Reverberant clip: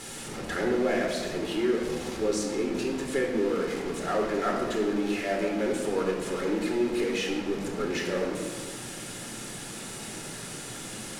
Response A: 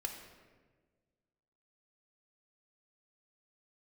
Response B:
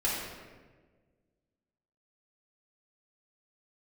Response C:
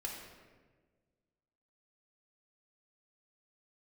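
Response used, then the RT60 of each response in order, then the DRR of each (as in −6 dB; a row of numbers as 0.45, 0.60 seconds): C; 1.5, 1.4, 1.5 seconds; 3.0, −7.5, −1.5 decibels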